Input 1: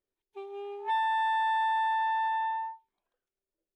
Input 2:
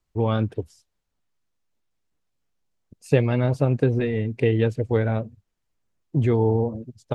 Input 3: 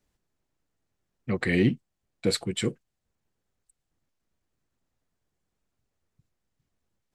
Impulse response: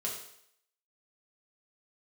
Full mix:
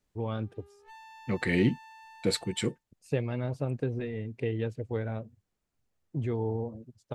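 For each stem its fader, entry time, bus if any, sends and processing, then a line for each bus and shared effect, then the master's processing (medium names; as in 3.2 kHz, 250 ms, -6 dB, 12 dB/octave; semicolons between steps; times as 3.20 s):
-18.5 dB, 0.00 s, no send, comb filter that takes the minimum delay 0.32 ms
-11.0 dB, 0.00 s, no send, none
-2.5 dB, 0.00 s, no send, none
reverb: none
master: none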